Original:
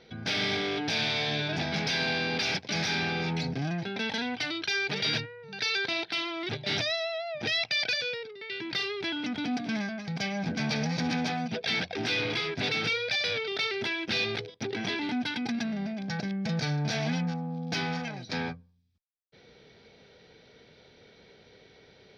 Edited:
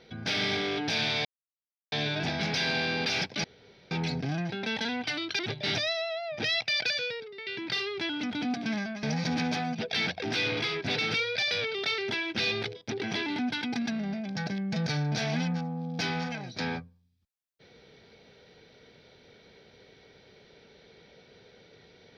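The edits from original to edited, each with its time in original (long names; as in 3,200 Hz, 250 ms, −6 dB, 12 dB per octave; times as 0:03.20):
0:01.25: splice in silence 0.67 s
0:02.77–0:03.24: fill with room tone
0:04.72–0:06.42: remove
0:10.06–0:10.76: remove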